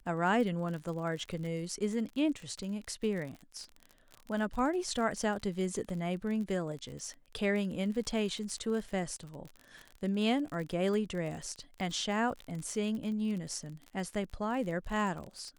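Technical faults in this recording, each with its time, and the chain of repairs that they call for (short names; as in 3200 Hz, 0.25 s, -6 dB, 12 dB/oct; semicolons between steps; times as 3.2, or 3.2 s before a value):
crackle 41/s -38 dBFS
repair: de-click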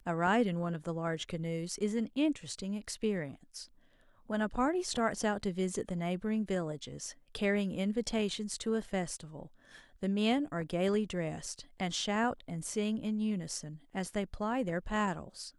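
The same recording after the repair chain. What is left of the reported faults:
none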